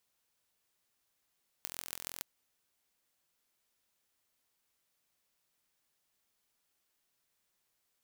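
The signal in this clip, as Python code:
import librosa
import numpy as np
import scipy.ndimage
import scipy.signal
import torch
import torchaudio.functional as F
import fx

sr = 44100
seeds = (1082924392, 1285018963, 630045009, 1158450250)

y = fx.impulse_train(sr, length_s=0.57, per_s=42.8, accent_every=6, level_db=-10.0)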